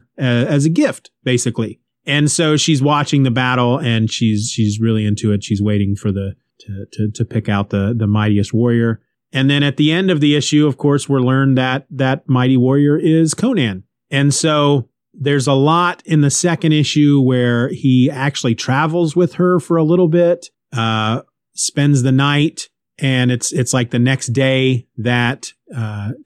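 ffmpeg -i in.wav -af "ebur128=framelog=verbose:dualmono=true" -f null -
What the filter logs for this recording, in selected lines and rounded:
Integrated loudness:
  I:         -12.2 LUFS
  Threshold: -22.5 LUFS
Loudness range:
  LRA:         3.8 LU
  Threshold: -32.3 LUFS
  LRA low:   -14.9 LUFS
  LRA high:  -11.1 LUFS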